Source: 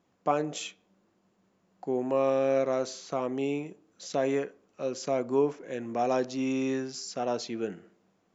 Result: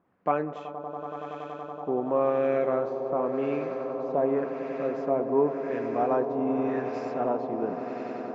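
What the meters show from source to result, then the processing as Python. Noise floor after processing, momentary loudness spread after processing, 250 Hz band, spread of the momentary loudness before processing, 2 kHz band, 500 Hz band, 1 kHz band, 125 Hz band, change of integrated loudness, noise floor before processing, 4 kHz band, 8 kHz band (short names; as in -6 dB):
-41 dBFS, 11 LU, +1.5 dB, 12 LU, 0.0 dB, +3.0 dB, +4.0 dB, +1.0 dB, +1.5 dB, -71 dBFS, under -10 dB, n/a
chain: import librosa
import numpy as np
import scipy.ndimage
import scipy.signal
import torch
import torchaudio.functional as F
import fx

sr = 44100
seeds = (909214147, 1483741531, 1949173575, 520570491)

y = fx.echo_swell(x, sr, ms=94, loudest=8, wet_db=-14.0)
y = fx.filter_lfo_lowpass(y, sr, shape='sine', hz=0.9, low_hz=950.0, high_hz=1900.0, q=1.4)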